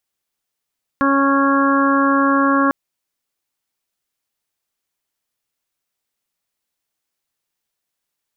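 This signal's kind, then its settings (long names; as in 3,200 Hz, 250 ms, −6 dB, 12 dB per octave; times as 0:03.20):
steady harmonic partials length 1.70 s, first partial 276 Hz, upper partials −6.5/−14/−1.5/−6.5/−8 dB, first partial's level −15.5 dB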